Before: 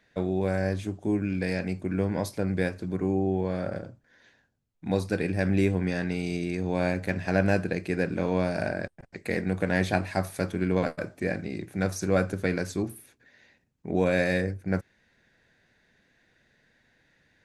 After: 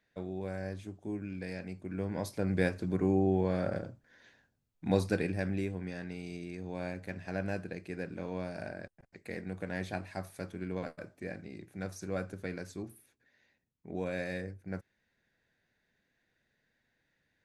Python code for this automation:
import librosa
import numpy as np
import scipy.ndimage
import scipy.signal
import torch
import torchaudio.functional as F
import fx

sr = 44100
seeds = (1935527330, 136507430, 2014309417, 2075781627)

y = fx.gain(x, sr, db=fx.line((1.79, -11.5), (2.66, -1.5), (5.07, -1.5), (5.67, -12.0)))